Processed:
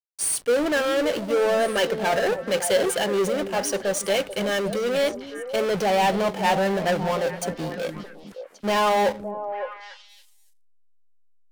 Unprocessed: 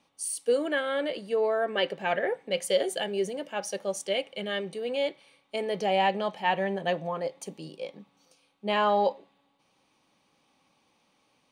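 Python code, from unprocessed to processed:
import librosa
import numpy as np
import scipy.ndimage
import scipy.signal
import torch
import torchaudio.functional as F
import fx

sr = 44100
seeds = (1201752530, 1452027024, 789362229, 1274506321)

p1 = fx.high_shelf(x, sr, hz=10000.0, db=5.5)
p2 = fx.power_curve(p1, sr, exponent=0.5)
p3 = fx.backlash(p2, sr, play_db=-26.0)
y = p3 + fx.echo_stepped(p3, sr, ms=282, hz=230.0, octaves=1.4, feedback_pct=70, wet_db=-5, dry=0)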